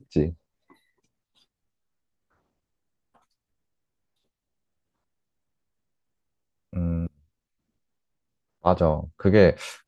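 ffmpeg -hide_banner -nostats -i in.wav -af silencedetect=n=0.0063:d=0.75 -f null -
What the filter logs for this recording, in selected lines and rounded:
silence_start: 0.72
silence_end: 6.73 | silence_duration: 6.01
silence_start: 7.07
silence_end: 8.64 | silence_duration: 1.56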